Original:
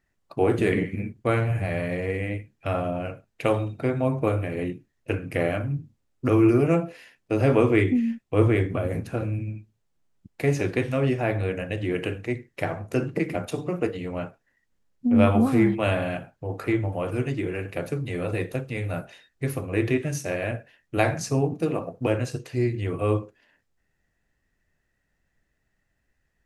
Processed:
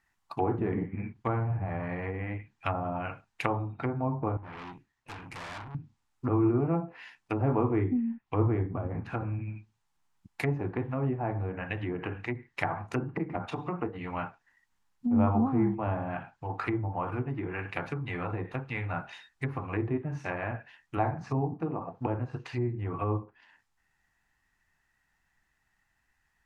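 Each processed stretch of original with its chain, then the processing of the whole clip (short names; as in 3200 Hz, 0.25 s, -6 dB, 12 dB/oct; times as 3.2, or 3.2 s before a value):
4.37–5.75 high shelf 8100 Hz -10 dB + tube stage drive 38 dB, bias 0.35
whole clip: treble ducked by the level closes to 640 Hz, closed at -22 dBFS; resonant low shelf 700 Hz -7 dB, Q 3; gain +2 dB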